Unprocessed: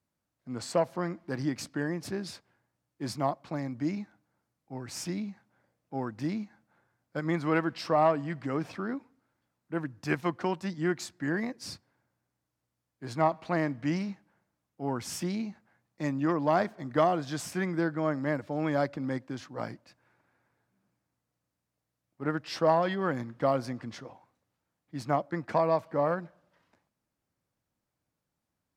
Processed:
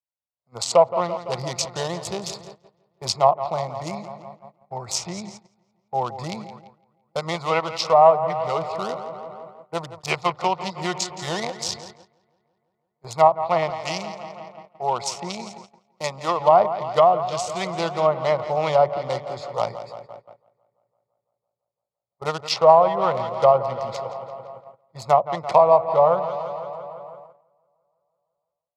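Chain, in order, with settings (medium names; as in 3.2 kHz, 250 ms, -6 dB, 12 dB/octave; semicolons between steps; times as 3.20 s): local Wiener filter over 15 samples; tilt shelf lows -10 dB, about 770 Hz; filtered feedback delay 169 ms, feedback 74%, low-pass 3.9 kHz, level -12.5 dB; level rider gain up to 12 dB; static phaser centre 680 Hz, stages 4; low-pass that closes with the level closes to 1.3 kHz, closed at -17 dBFS; 13.70–16.40 s: high-pass 220 Hz 6 dB/octave; gate -44 dBFS, range -19 dB; trim +4 dB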